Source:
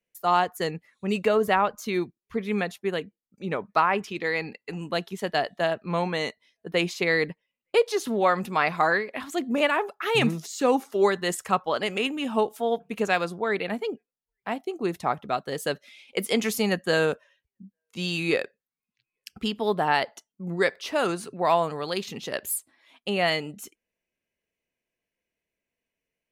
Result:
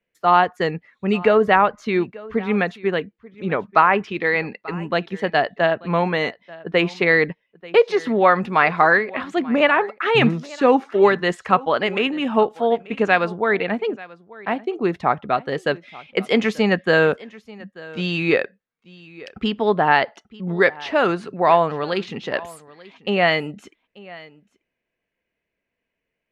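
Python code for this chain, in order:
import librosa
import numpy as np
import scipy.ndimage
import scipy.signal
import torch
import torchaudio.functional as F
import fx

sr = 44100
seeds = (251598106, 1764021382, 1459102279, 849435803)

p1 = scipy.signal.sosfilt(scipy.signal.butter(2, 3000.0, 'lowpass', fs=sr, output='sos'), x)
p2 = fx.peak_eq(p1, sr, hz=1700.0, db=2.5, octaves=0.77)
p3 = p2 + fx.echo_single(p2, sr, ms=887, db=-21.0, dry=0)
y = F.gain(torch.from_numpy(p3), 6.5).numpy()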